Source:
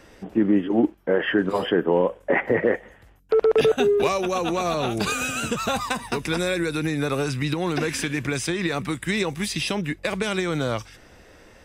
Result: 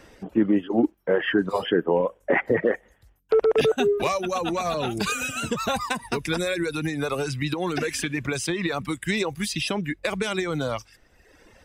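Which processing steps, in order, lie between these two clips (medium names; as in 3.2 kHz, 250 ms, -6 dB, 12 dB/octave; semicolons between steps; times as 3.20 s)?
reverb removal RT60 1.2 s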